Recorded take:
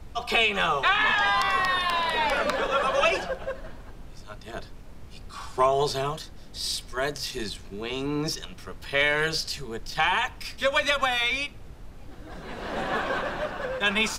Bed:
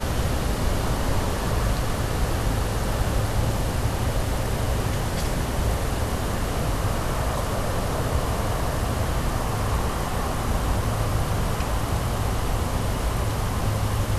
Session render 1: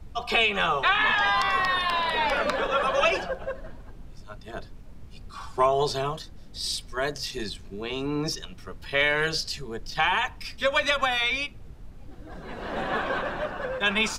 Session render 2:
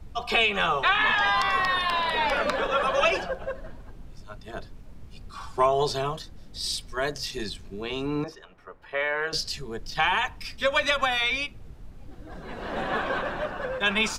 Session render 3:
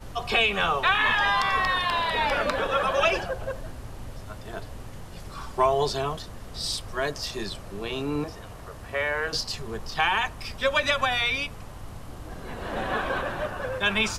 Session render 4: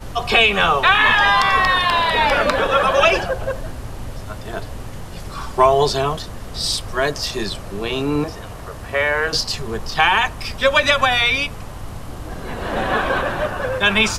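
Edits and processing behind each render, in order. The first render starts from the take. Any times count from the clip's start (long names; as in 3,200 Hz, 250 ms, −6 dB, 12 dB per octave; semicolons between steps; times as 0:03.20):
broadband denoise 6 dB, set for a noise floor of −44 dBFS
0:08.24–0:09.33: three-way crossover with the lows and the highs turned down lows −16 dB, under 410 Hz, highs −20 dB, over 2,000 Hz
mix in bed −17.5 dB
level +8.5 dB; brickwall limiter −1 dBFS, peak gain reduction 0.5 dB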